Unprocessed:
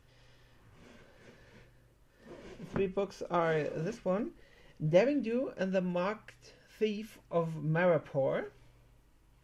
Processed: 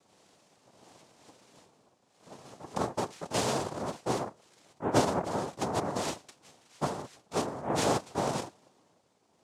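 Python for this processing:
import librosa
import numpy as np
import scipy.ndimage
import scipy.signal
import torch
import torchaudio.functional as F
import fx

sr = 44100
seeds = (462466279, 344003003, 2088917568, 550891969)

y = fx.noise_vocoder(x, sr, seeds[0], bands=2)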